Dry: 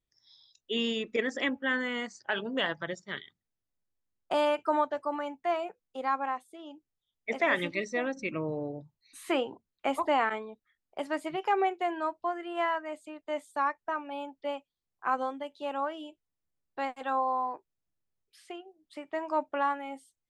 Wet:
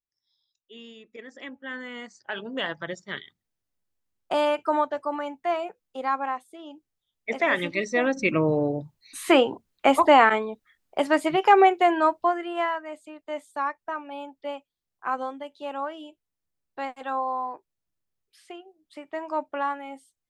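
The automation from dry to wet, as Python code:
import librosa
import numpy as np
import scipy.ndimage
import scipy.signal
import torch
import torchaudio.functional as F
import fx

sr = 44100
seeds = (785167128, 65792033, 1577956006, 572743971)

y = fx.gain(x, sr, db=fx.line((1.07, -15.0), (1.75, -6.0), (3.05, 3.5), (7.63, 3.5), (8.27, 11.0), (12.16, 11.0), (12.78, 1.0)))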